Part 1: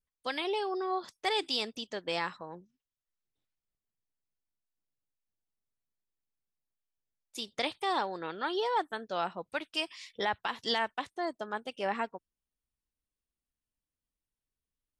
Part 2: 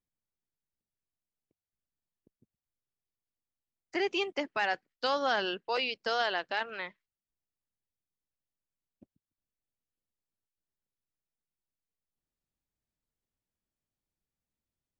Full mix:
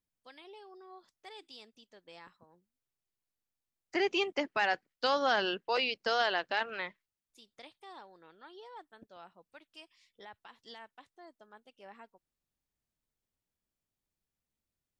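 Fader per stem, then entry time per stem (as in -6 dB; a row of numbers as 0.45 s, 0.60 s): -19.5 dB, +0.5 dB; 0.00 s, 0.00 s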